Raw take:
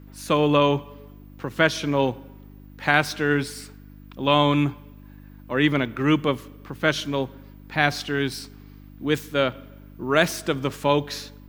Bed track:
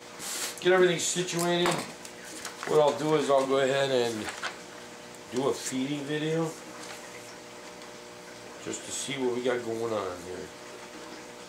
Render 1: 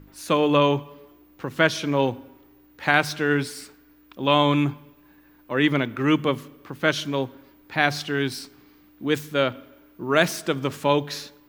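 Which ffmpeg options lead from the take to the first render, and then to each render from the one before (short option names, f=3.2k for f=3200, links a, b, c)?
-af "bandreject=f=50:t=h:w=4,bandreject=f=100:t=h:w=4,bandreject=f=150:t=h:w=4,bandreject=f=200:t=h:w=4,bandreject=f=250:t=h:w=4"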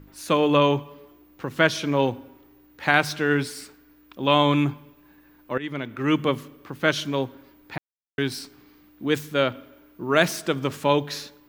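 -filter_complex "[0:a]asplit=4[a][b][c][d];[a]atrim=end=5.58,asetpts=PTS-STARTPTS,afade=t=out:st=5.576:d=0.004:c=hsin:silence=0.133352[e];[b]atrim=start=5.58:end=7.78,asetpts=PTS-STARTPTS,afade=t=in:d=0.66:silence=0.133352,afade=t=out:st=2.196:d=0.004:c=hsin[f];[c]atrim=start=7.78:end=8.18,asetpts=PTS-STARTPTS,volume=0[g];[d]atrim=start=8.18,asetpts=PTS-STARTPTS,afade=t=in:d=0.004:c=hsin[h];[e][f][g][h]concat=n=4:v=0:a=1"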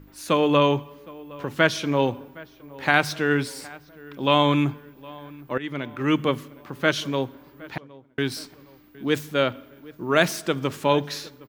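-filter_complex "[0:a]asplit=2[a][b];[b]adelay=764,lowpass=f=2.1k:p=1,volume=-21dB,asplit=2[c][d];[d]adelay=764,lowpass=f=2.1k:p=1,volume=0.53,asplit=2[e][f];[f]adelay=764,lowpass=f=2.1k:p=1,volume=0.53,asplit=2[g][h];[h]adelay=764,lowpass=f=2.1k:p=1,volume=0.53[i];[a][c][e][g][i]amix=inputs=5:normalize=0"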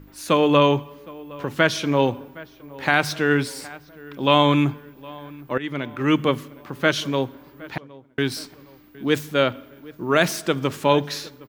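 -af "volume=2.5dB,alimiter=limit=-3dB:level=0:latency=1"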